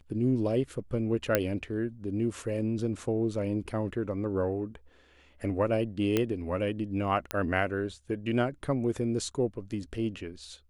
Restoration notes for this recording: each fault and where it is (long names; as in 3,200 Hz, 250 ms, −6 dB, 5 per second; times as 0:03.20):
0:01.35: click −9 dBFS
0:06.17: click −12 dBFS
0:07.31: click −13 dBFS